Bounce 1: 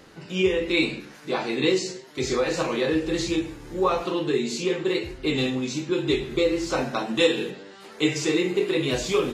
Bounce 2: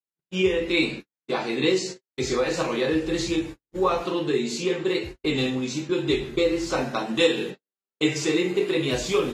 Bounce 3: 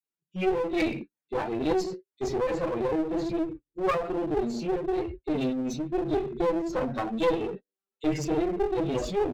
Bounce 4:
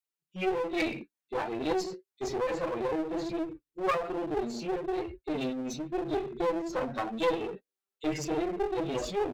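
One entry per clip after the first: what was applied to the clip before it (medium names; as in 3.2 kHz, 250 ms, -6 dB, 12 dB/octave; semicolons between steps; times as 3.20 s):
gate -33 dBFS, range -58 dB
spectral contrast enhancement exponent 2; bands offset in time highs, lows 30 ms, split 4.3 kHz; one-sided clip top -32.5 dBFS
bass shelf 430 Hz -7.5 dB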